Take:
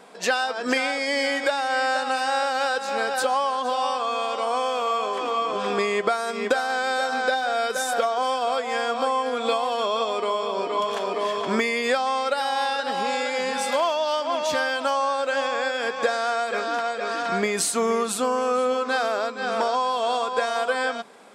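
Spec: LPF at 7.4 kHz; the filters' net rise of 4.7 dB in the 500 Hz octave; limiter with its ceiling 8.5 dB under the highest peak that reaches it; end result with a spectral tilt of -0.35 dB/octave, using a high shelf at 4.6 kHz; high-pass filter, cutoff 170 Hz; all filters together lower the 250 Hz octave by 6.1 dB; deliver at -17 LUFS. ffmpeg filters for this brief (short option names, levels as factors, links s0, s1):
-af "highpass=170,lowpass=7400,equalizer=f=250:t=o:g=-8,equalizer=f=500:t=o:g=7,highshelf=f=4600:g=9,volume=1.88,alimiter=limit=0.422:level=0:latency=1"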